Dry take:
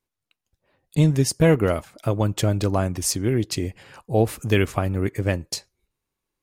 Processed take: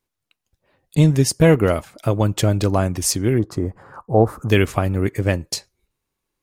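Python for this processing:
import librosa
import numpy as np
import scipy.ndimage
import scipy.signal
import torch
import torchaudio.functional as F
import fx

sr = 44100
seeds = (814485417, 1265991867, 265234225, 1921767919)

y = fx.high_shelf_res(x, sr, hz=1800.0, db=-13.5, q=3.0, at=(3.38, 4.48), fade=0.02)
y = F.gain(torch.from_numpy(y), 3.5).numpy()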